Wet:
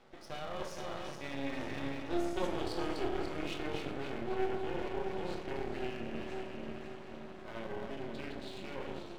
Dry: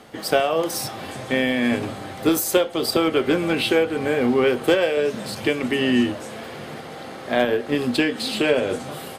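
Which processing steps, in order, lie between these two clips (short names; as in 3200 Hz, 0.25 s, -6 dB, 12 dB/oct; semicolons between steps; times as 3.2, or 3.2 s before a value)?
regenerating reverse delay 0.251 s, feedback 70%, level -6 dB; Doppler pass-by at 2.49, 26 m/s, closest 6.2 m; HPF 55 Hz; notches 60/120/180/240/300/360/420 Hz; reverse; compressor 5:1, threshold -44 dBFS, peak gain reduction 26 dB; reverse; air absorption 110 m; on a send at -1 dB: reverb RT60 0.95 s, pre-delay 3 ms; on the sum: half-wave rectifier; gain +8 dB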